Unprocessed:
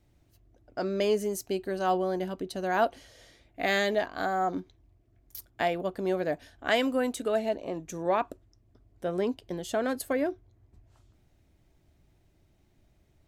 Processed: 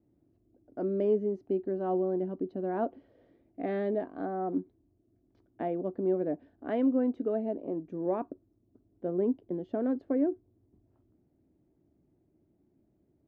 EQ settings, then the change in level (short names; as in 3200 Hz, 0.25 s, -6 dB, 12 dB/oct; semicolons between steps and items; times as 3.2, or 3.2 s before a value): band-pass 290 Hz, Q 1.7; air absorption 230 m; +4.5 dB